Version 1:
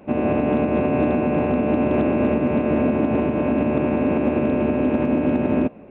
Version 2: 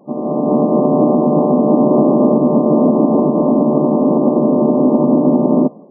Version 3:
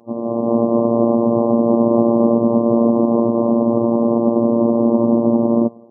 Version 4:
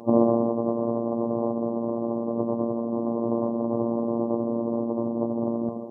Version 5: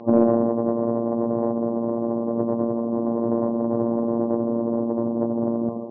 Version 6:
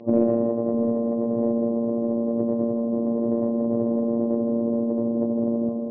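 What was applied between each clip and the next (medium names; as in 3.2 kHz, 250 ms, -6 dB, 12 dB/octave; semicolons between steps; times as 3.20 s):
FFT band-pass 130–1200 Hz; level rider gain up to 15.5 dB; trim -1 dB
robot voice 116 Hz; trim -1 dB
compressor with a negative ratio -25 dBFS, ratio -1; trim -1 dB
in parallel at -5 dB: saturation -14 dBFS, distortion -15 dB; on the sum: distance through air 240 m
high-order bell 1.1 kHz -9 dB 1.3 oct; two-band feedback delay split 550 Hz, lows 650 ms, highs 159 ms, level -8 dB; trim -2.5 dB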